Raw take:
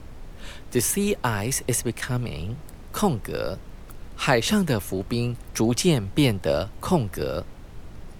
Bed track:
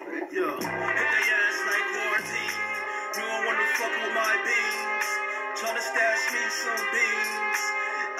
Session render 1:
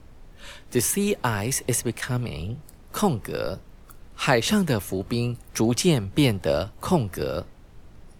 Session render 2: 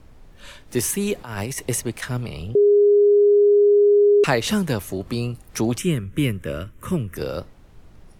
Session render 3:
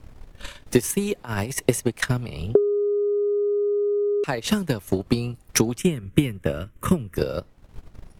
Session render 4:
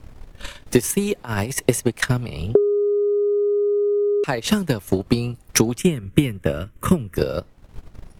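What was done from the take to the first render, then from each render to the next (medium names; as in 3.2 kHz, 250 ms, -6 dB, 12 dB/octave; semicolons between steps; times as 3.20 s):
noise print and reduce 7 dB
1.15–1.61 s: compressor with a negative ratio -28 dBFS, ratio -0.5; 2.55–4.24 s: bleep 410 Hz -11 dBFS; 5.78–7.16 s: static phaser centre 1.9 kHz, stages 4
compression 3:1, threshold -24 dBFS, peak gain reduction 8 dB; transient shaper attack +11 dB, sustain -8 dB
trim +3 dB; peak limiter -2 dBFS, peak gain reduction 1.5 dB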